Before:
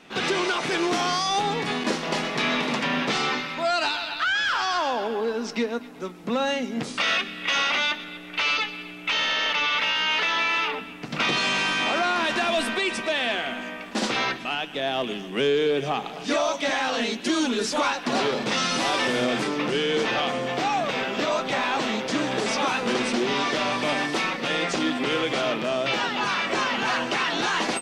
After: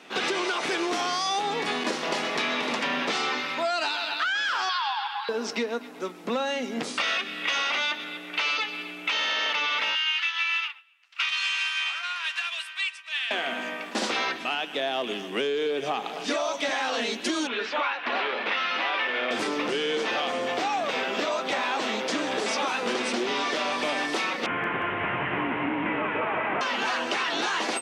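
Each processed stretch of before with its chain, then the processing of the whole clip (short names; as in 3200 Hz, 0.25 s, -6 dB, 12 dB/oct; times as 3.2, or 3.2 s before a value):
4.69–5.29 brick-wall FIR high-pass 750 Hz + resonant high shelf 5300 Hz -9 dB, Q 3
9.95–13.31 HPF 1200 Hz 24 dB/oct + bell 2800 Hz +6.5 dB 0.48 oct + upward expander 2.5:1, over -36 dBFS
17.47–19.31 LPF 2600 Hz 24 dB/oct + tilt +4.5 dB/oct
24.46–26.61 delta modulation 16 kbps, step -28 dBFS + frequency shift -350 Hz + feedback echo 0.18 s, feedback 34%, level -4 dB
whole clip: HPF 280 Hz 12 dB/oct; compressor, threshold -26 dBFS; gain +2 dB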